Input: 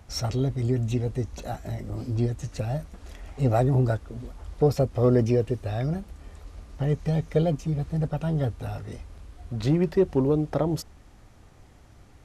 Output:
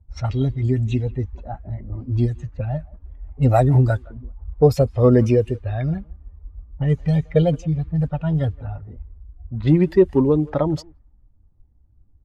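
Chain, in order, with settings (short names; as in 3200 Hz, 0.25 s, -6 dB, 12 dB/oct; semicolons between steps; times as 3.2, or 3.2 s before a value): per-bin expansion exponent 1.5; speakerphone echo 0.17 s, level -23 dB; low-pass opened by the level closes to 360 Hz, open at -23 dBFS; gain +8.5 dB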